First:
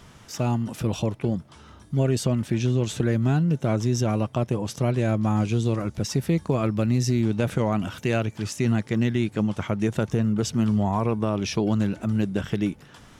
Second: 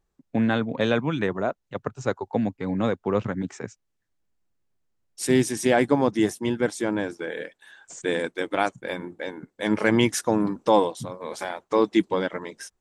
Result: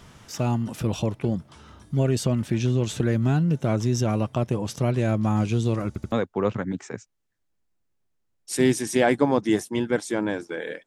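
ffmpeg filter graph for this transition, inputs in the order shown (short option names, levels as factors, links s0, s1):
-filter_complex "[0:a]apad=whole_dur=10.86,atrim=end=10.86,asplit=3[s0][s1][s2];[s0]atrim=end=5.962[s3];[s1]atrim=start=5.878:end=5.962[s4];[s2]atrim=start=5.878:end=5.962[s5];[1:a]atrim=start=2.818:end=7.56[s6];[s3][s4]acrossfade=d=0.004:c1=hsin:c2=hsin[s7];[s7][s5]acrossfade=d=0.004:c1=hsin:c2=hsin[s8];[s8][s6]acrossfade=d=0.004:c1=hsin:c2=hsin"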